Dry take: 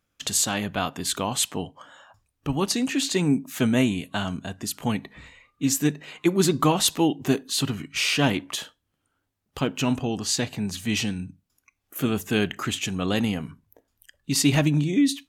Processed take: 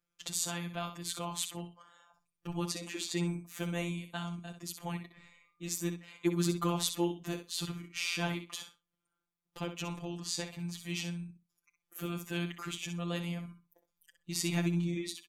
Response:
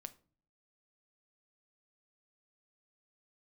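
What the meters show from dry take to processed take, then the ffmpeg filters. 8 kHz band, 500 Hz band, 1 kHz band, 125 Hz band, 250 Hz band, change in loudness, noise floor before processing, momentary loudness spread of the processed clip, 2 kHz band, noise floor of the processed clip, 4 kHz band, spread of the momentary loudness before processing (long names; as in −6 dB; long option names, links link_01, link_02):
−11.5 dB, −12.0 dB, −12.0 dB, −9.5 dB, −12.5 dB, −11.5 dB, −77 dBFS, 12 LU, −11.0 dB, below −85 dBFS, −11.5 dB, 11 LU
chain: -af "afftfilt=real='hypot(re,im)*cos(PI*b)':imag='0':win_size=1024:overlap=0.75,aecho=1:1:63|126:0.355|0.0568,volume=-8.5dB"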